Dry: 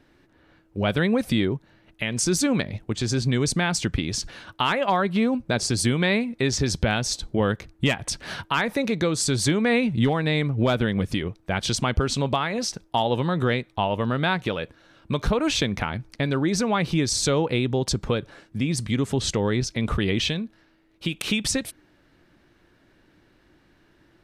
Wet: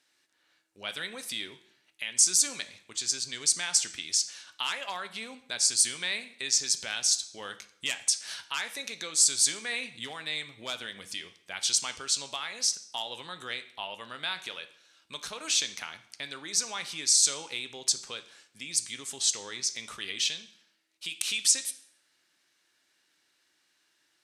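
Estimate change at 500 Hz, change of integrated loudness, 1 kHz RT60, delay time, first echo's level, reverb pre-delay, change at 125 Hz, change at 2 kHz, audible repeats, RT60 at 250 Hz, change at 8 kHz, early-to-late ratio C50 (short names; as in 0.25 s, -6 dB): -20.5 dB, -4.0 dB, 0.65 s, none, none, 4 ms, -31.5 dB, -8.0 dB, none, 0.65 s, +5.0 dB, 14.0 dB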